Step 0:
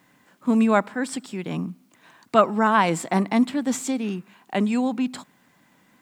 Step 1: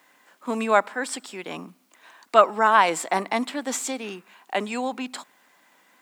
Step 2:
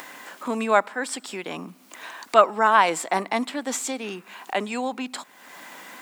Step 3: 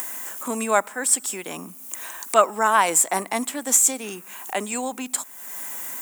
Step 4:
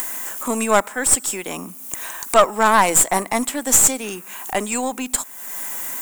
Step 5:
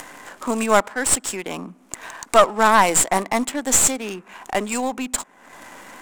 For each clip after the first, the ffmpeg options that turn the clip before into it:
ffmpeg -i in.wav -af "highpass=480,volume=2.5dB" out.wav
ffmpeg -i in.wav -af "acompressor=mode=upward:threshold=-27dB:ratio=2.5" out.wav
ffmpeg -i in.wav -af "aexciter=amount=5.8:drive=7.3:freq=6300,volume=-1dB" out.wav
ffmpeg -i in.wav -af "aeval=exprs='(tanh(3.98*val(0)+0.55)-tanh(0.55))/3.98':channel_layout=same,volume=7dB" out.wav
ffmpeg -i in.wav -af "adynamicsmooth=sensitivity=5.5:basefreq=1500" out.wav

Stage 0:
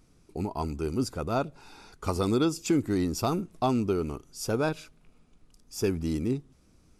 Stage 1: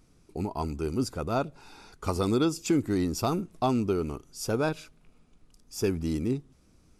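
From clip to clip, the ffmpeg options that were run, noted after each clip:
ffmpeg -i in.wav -af anull out.wav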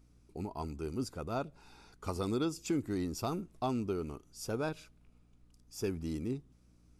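ffmpeg -i in.wav -af "aeval=exprs='val(0)+0.00158*(sin(2*PI*60*n/s)+sin(2*PI*2*60*n/s)/2+sin(2*PI*3*60*n/s)/3+sin(2*PI*4*60*n/s)/4+sin(2*PI*5*60*n/s)/5)':channel_layout=same,volume=-8dB" out.wav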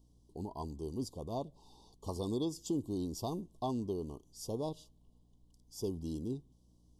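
ffmpeg -i in.wav -af "asuperstop=centerf=1800:order=20:qfactor=1,volume=-2dB" out.wav

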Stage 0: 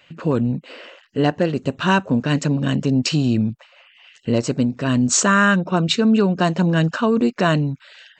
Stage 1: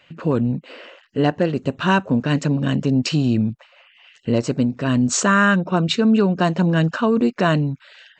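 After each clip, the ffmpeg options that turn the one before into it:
ffmpeg -i in.wav -af "highshelf=frequency=5000:gain=-6" out.wav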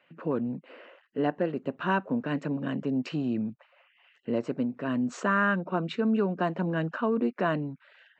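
ffmpeg -i in.wav -filter_complex "[0:a]acrossover=split=170 2600:gain=0.112 1 0.126[link_01][link_02][link_03];[link_01][link_02][link_03]amix=inputs=3:normalize=0,volume=-8dB" out.wav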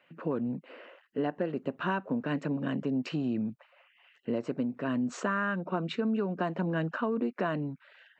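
ffmpeg -i in.wav -af "acompressor=threshold=-26dB:ratio=6" out.wav

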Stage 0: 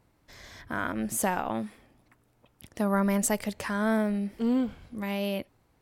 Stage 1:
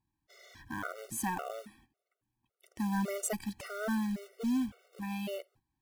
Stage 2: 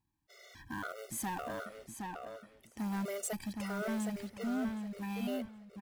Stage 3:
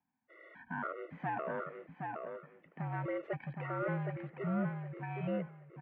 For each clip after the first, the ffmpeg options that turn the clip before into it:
ffmpeg -i in.wav -af "agate=range=-12dB:threshold=-54dB:ratio=16:detection=peak,acrusher=bits=4:mode=log:mix=0:aa=0.000001,afftfilt=real='re*gt(sin(2*PI*1.8*pts/sr)*(1-2*mod(floor(b*sr/1024/380),2)),0)':imag='im*gt(sin(2*PI*1.8*pts/sr)*(1-2*mod(floor(b*sr/1024/380),2)),0)':win_size=1024:overlap=0.75,volume=-4.5dB" out.wav
ffmpeg -i in.wav -filter_complex "[0:a]asoftclip=type=tanh:threshold=-32dB,asplit=2[link_01][link_02];[link_02]adelay=767,lowpass=frequency=4800:poles=1,volume=-4dB,asplit=2[link_03][link_04];[link_04]adelay=767,lowpass=frequency=4800:poles=1,volume=0.23,asplit=2[link_05][link_06];[link_06]adelay=767,lowpass=frequency=4800:poles=1,volume=0.23[link_07];[link_01][link_03][link_05][link_07]amix=inputs=4:normalize=0" out.wav
ffmpeg -i in.wav -af "highpass=frequency=230:width_type=q:width=0.5412,highpass=frequency=230:width_type=q:width=1.307,lowpass=frequency=2400:width_type=q:width=0.5176,lowpass=frequency=2400:width_type=q:width=0.7071,lowpass=frequency=2400:width_type=q:width=1.932,afreqshift=-59,volume=2.5dB" out.wav

